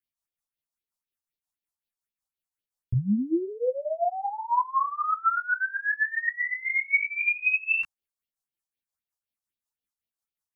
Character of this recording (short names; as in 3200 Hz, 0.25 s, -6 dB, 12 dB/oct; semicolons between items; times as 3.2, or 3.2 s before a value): phasing stages 4, 3.9 Hz, lowest notch 320–1500 Hz; tremolo triangle 5.5 Hz, depth 60%; a shimmering, thickened sound